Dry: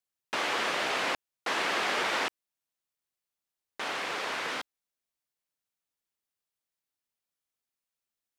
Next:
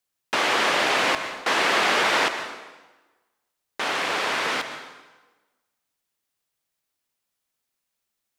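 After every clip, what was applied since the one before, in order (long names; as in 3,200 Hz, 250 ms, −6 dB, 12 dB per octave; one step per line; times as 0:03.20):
dense smooth reverb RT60 1.2 s, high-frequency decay 0.85×, pre-delay 105 ms, DRR 8.5 dB
level +8 dB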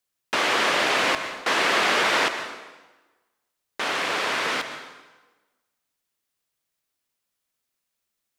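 parametric band 820 Hz −2.5 dB 0.33 octaves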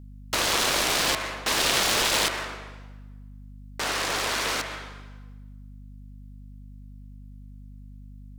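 phase distortion by the signal itself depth 0.35 ms
mains hum 50 Hz, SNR 14 dB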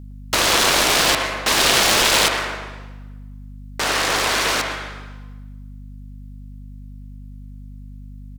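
far-end echo of a speakerphone 110 ms, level −7 dB
level +7 dB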